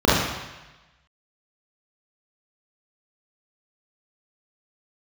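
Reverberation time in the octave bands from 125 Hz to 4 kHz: 1.2, 0.95, 1.0, 1.1, 1.2, 1.1 s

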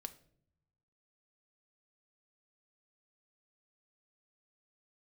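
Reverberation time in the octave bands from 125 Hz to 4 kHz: 1.5, 1.1, 0.75, 0.50, 0.50, 0.40 s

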